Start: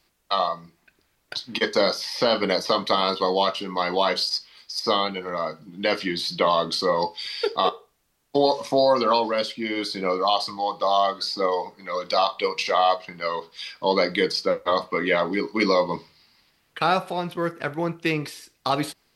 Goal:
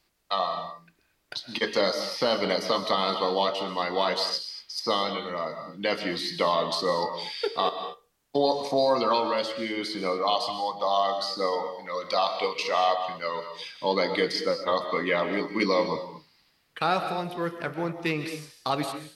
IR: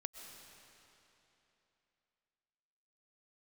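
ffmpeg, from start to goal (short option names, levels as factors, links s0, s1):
-filter_complex "[1:a]atrim=start_sample=2205,afade=t=out:st=0.3:d=0.01,atrim=end_sample=13671[s0];[0:a][s0]afir=irnorm=-1:irlink=0"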